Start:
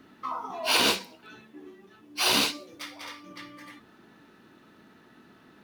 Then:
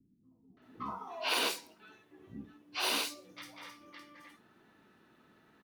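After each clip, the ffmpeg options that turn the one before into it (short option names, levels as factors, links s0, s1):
-filter_complex "[0:a]acrossover=split=250|5000[s0][s1][s2];[s1]adelay=570[s3];[s2]adelay=620[s4];[s0][s3][s4]amix=inputs=3:normalize=0,volume=0.422"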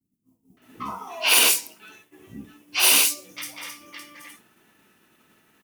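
-af "agate=range=0.0224:threshold=0.00112:ratio=3:detection=peak,highshelf=f=2800:g=8.5,aexciter=amount=1.7:drive=2.7:freq=2200,volume=2.11"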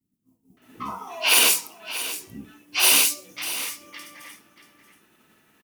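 -af "aecho=1:1:633:0.224"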